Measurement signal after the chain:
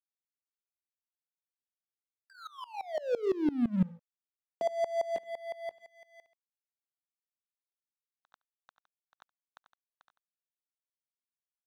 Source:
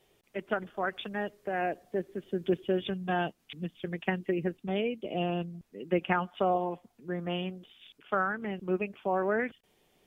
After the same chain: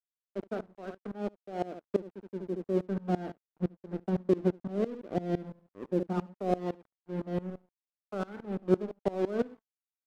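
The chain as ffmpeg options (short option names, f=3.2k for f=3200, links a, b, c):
-filter_complex "[0:a]aemphasis=mode=reproduction:type=50kf,bandreject=f=220.8:t=h:w=4,bandreject=f=441.6:t=h:w=4,bandreject=f=662.4:t=h:w=4,bandreject=f=883.2:t=h:w=4,bandreject=f=1.104k:t=h:w=4,bandreject=f=1.3248k:t=h:w=4,bandreject=f=1.5456k:t=h:w=4,bandreject=f=1.7664k:t=h:w=4,bandreject=f=1.9872k:t=h:w=4,bandreject=f=2.208k:t=h:w=4,bandreject=f=2.4288k:t=h:w=4,bandreject=f=2.6496k:t=h:w=4,bandreject=f=2.8704k:t=h:w=4,bandreject=f=3.0912k:t=h:w=4,bandreject=f=3.312k:t=h:w=4,bandreject=f=3.5328k:t=h:w=4,bandreject=f=3.7536k:t=h:w=4,bandreject=f=3.9744k:t=h:w=4,bandreject=f=4.1952k:t=h:w=4,bandreject=f=4.416k:t=h:w=4,bandreject=f=4.6368k:t=h:w=4,bandreject=f=4.8576k:t=h:w=4,bandreject=f=5.0784k:t=h:w=4,bandreject=f=5.2992k:t=h:w=4,bandreject=f=5.52k:t=h:w=4,bandreject=f=5.7408k:t=h:w=4,bandreject=f=5.9616k:t=h:w=4,bandreject=f=6.1824k:t=h:w=4,afftfilt=real='re*between(b*sr/4096,170,1600)':imag='im*between(b*sr/4096,170,1600)':win_size=4096:overlap=0.75,tiltshelf=f=970:g=4,acrossover=split=370|550[a][b][c];[c]acompressor=threshold=-39dB:ratio=16[d];[a][b][d]amix=inputs=3:normalize=0,aeval=exprs='sgn(val(0))*max(abs(val(0))-0.0075,0)':c=same,asplit=2[e][f];[f]aecho=0:1:72:0.211[g];[e][g]amix=inputs=2:normalize=0,aeval=exprs='val(0)*pow(10,-22*if(lt(mod(-5.9*n/s,1),2*abs(-5.9)/1000),1-mod(-5.9*n/s,1)/(2*abs(-5.9)/1000),(mod(-5.9*n/s,1)-2*abs(-5.9)/1000)/(1-2*abs(-5.9)/1000))/20)':c=same,volume=6.5dB"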